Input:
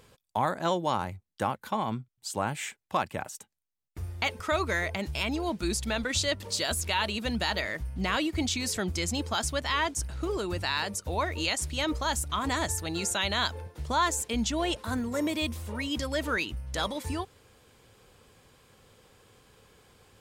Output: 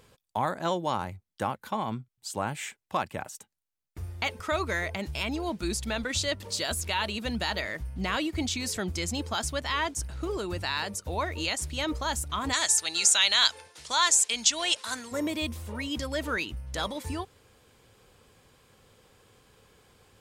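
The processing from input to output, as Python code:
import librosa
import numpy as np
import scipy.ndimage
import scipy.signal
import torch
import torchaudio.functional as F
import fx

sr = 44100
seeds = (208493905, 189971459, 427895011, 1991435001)

y = fx.weighting(x, sr, curve='ITU-R 468', at=(12.52, 15.11), fade=0.02)
y = F.gain(torch.from_numpy(y), -1.0).numpy()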